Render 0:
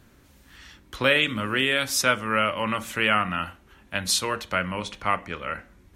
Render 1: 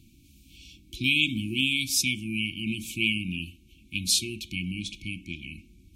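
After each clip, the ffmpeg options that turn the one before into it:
-af "afftfilt=real='re*(1-between(b*sr/4096,360,2200))':imag='im*(1-between(b*sr/4096,360,2200))':win_size=4096:overlap=0.75"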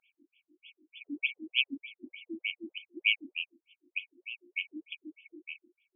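-af "afftfilt=real='re*between(b*sr/1024,360*pow(2500/360,0.5+0.5*sin(2*PI*3.3*pts/sr))/1.41,360*pow(2500/360,0.5+0.5*sin(2*PI*3.3*pts/sr))*1.41)':imag='im*between(b*sr/1024,360*pow(2500/360,0.5+0.5*sin(2*PI*3.3*pts/sr))/1.41,360*pow(2500/360,0.5+0.5*sin(2*PI*3.3*pts/sr))*1.41)':win_size=1024:overlap=0.75,volume=1.33"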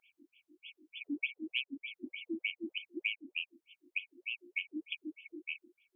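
-af "acompressor=threshold=0.0178:ratio=12,volume=1.41"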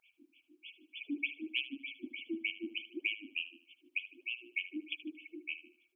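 -af "aecho=1:1:76|152|228:0.188|0.064|0.0218"

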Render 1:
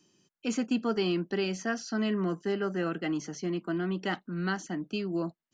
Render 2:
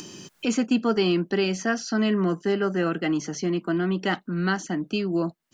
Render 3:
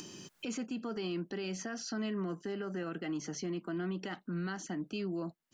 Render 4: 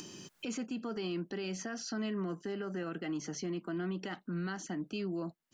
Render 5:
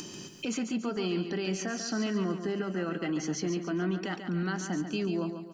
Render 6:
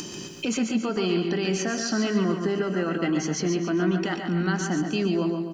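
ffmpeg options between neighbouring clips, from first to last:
-af "acompressor=mode=upward:threshold=0.0251:ratio=2.5,volume=2.11"
-af "alimiter=limit=0.0708:level=0:latency=1:release=91,volume=0.447"
-af anull
-af "aecho=1:1:141|282|423|564|705:0.398|0.167|0.0702|0.0295|0.0124,volume=1.88"
-filter_complex "[0:a]asplit=2[s0][s1];[s1]adelay=123,lowpass=f=5000:p=1,volume=0.422,asplit=2[s2][s3];[s3]adelay=123,lowpass=f=5000:p=1,volume=0.41,asplit=2[s4][s5];[s5]adelay=123,lowpass=f=5000:p=1,volume=0.41,asplit=2[s6][s7];[s7]adelay=123,lowpass=f=5000:p=1,volume=0.41,asplit=2[s8][s9];[s9]adelay=123,lowpass=f=5000:p=1,volume=0.41[s10];[s0][s2][s4][s6][s8][s10]amix=inputs=6:normalize=0,volume=2"

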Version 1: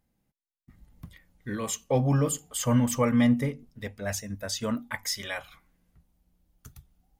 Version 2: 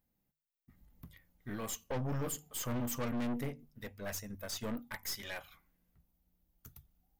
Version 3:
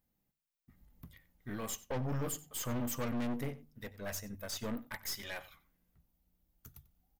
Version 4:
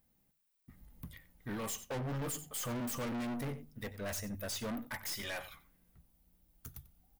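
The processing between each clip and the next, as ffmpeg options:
-af "bandreject=f=50:t=h:w=6,bandreject=f=100:t=h:w=6,bandreject=f=150:t=h:w=6,aexciter=amount=3.1:drive=5.3:freq=12000,aeval=exprs='(tanh(28.2*val(0)+0.6)-tanh(0.6))/28.2':c=same,volume=0.596"
-filter_complex "[0:a]asplit=2[s0][s1];[s1]adelay=93.29,volume=0.126,highshelf=f=4000:g=-2.1[s2];[s0][s2]amix=inputs=2:normalize=0"
-af "asoftclip=type=hard:threshold=0.0126,aexciter=amount=1.6:drive=3:freq=9000,aeval=exprs='0.0335*sin(PI/2*2.51*val(0)/0.0335)':c=same,volume=0.501"

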